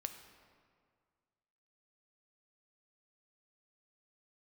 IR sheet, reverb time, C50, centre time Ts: 2.0 s, 8.5 dB, 24 ms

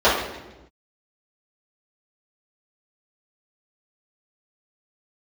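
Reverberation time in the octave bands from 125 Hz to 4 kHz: 1.2 s, 1.4 s, 1.1 s, 0.95 s, 0.90 s, 0.85 s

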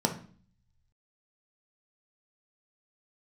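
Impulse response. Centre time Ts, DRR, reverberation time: 13 ms, 3.0 dB, 0.45 s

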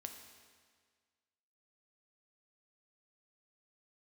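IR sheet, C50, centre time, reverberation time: 6.5 dB, 34 ms, 1.7 s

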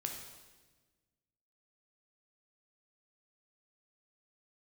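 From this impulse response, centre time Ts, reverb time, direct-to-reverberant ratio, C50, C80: 40 ms, 1.3 s, 2.0 dB, 4.5 dB, 6.5 dB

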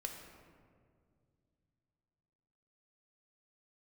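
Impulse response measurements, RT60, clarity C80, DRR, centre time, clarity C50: 2.2 s, 6.0 dB, 2.5 dB, 50 ms, 4.5 dB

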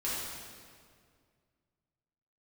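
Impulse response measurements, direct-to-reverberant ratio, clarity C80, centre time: -9.0 dB, 0.5 dB, 119 ms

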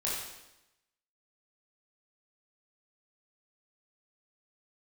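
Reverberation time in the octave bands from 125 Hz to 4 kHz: 0.95 s, 1.0 s, 0.95 s, 0.90 s, 0.90 s, 0.90 s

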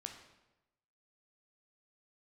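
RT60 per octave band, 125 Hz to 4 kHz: 1.1 s, 1.0 s, 1.0 s, 0.95 s, 0.90 s, 0.80 s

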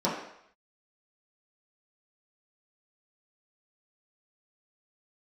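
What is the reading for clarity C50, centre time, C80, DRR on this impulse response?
4.0 dB, 45 ms, 6.5 dB, -8.5 dB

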